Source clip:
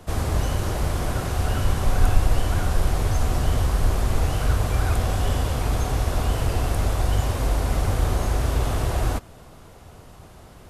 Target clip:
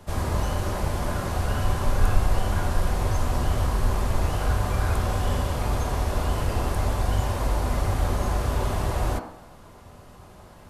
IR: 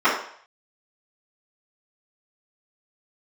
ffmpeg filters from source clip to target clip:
-filter_complex "[0:a]bandreject=f=60:t=h:w=6,bandreject=f=120:t=h:w=6,asplit=2[a][b];[1:a]atrim=start_sample=2205,asetrate=35721,aresample=44100[c];[b][c]afir=irnorm=-1:irlink=0,volume=-23.5dB[d];[a][d]amix=inputs=2:normalize=0,volume=-3dB"

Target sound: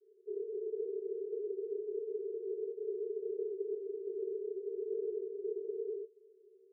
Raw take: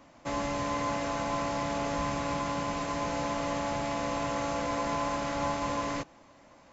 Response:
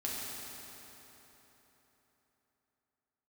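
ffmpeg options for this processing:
-af "acrusher=samples=10:mix=1:aa=0.000001:lfo=1:lforange=6:lforate=3.6,crystalizer=i=8.5:c=0,aeval=exprs='max(val(0),0)':c=same,asuperpass=centerf=410:order=12:qfactor=5,volume=12dB"

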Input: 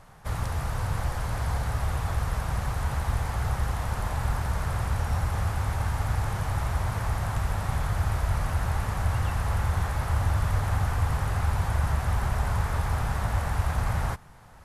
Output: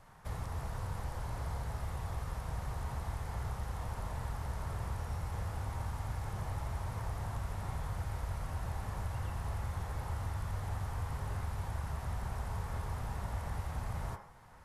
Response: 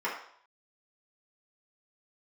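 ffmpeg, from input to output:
-filter_complex "[0:a]acrossover=split=910|2500|7900[a][b][c][d];[a]acompressor=threshold=-27dB:ratio=4[e];[b]acompressor=threshold=-51dB:ratio=4[f];[c]acompressor=threshold=-52dB:ratio=4[g];[d]acompressor=threshold=-54dB:ratio=4[h];[e][f][g][h]amix=inputs=4:normalize=0,asplit=2[i][j];[1:a]atrim=start_sample=2205,adelay=27[k];[j][k]afir=irnorm=-1:irlink=0,volume=-11dB[l];[i][l]amix=inputs=2:normalize=0,volume=-7.5dB"

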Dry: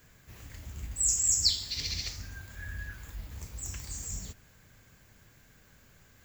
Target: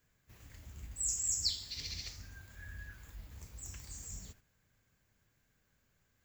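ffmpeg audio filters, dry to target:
-af "agate=range=-8dB:threshold=-50dB:ratio=16:detection=peak,volume=-8dB"

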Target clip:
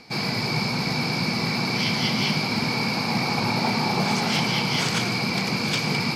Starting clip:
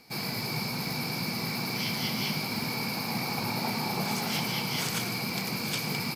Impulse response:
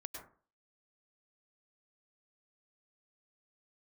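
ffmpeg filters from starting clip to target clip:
-af "lowpass=6.1k,areverse,acompressor=mode=upward:threshold=-36dB:ratio=2.5,areverse,volume=22.5dB,asoftclip=hard,volume=-22.5dB,volume=8dB"

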